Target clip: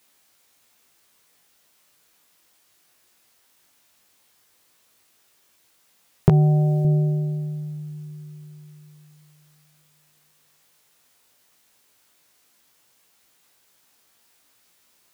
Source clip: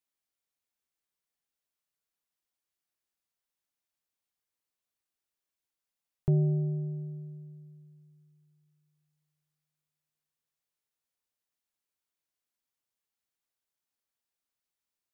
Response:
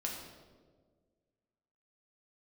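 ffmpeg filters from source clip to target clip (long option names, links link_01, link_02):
-filter_complex "[0:a]highpass=frequency=97:poles=1,acompressor=threshold=-32dB:ratio=2.5,flanger=delay=17:depth=2.9:speed=0.14,asettb=1/sr,asplit=3[link_01][link_02][link_03];[link_01]atrim=end=6.294[link_04];[link_02]atrim=start=6.29:end=6.85,asetpts=PTS-STARTPTS,afade=type=in:duration=0.004:curve=qsin,afade=type=out:start_time=0.556:duration=0.004:curve=qsin,tiltshelf=frequency=700:gain=-6[link_05];[link_03]atrim=start=6.846[link_06];[link_04][link_05]acrossfade=duration=0.004:curve1=hsin:curve2=qsin[link_07];[link_07][link_06]acrossfade=duration=0.004:curve1=qsin:curve2=hsin,alimiter=level_in=31.5dB:limit=-1dB:release=50:level=0:latency=1,volume=-1dB"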